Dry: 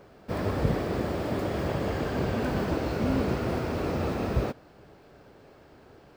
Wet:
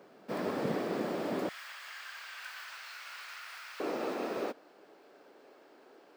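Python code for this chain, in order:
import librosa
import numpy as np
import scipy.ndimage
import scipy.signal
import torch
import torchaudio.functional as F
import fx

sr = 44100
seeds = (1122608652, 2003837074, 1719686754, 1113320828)

y = fx.highpass(x, sr, hz=fx.steps((0.0, 190.0), (1.49, 1400.0), (3.8, 280.0)), slope=24)
y = y * librosa.db_to_amplitude(-3.5)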